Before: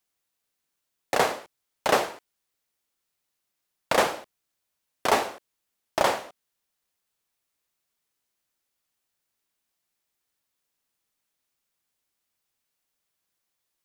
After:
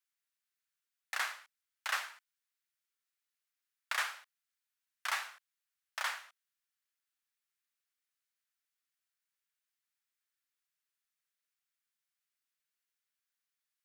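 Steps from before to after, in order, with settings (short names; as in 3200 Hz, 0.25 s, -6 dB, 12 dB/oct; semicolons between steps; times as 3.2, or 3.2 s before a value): ladder high-pass 1200 Hz, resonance 35%; gain -2.5 dB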